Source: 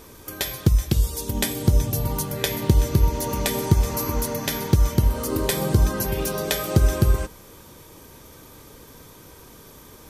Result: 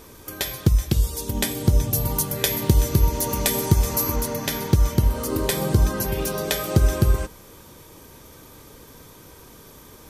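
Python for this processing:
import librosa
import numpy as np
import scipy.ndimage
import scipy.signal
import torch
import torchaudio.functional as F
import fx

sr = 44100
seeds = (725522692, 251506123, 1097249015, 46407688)

y = fx.high_shelf(x, sr, hz=5900.0, db=7.0, at=(1.93, 4.16))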